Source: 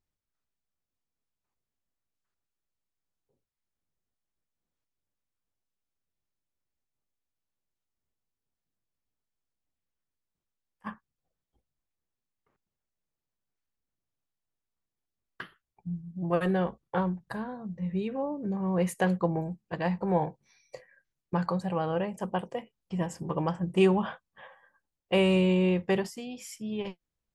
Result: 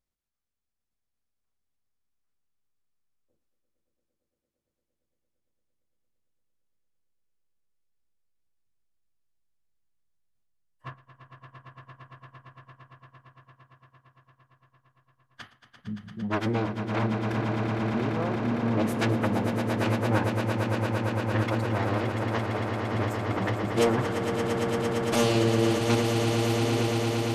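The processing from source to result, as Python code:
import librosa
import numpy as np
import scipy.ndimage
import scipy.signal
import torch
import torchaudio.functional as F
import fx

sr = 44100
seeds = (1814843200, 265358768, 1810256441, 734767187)

y = fx.self_delay(x, sr, depth_ms=0.57)
y = fx.pitch_keep_formants(y, sr, semitones=-8.5)
y = fx.echo_swell(y, sr, ms=114, loudest=8, wet_db=-8.5)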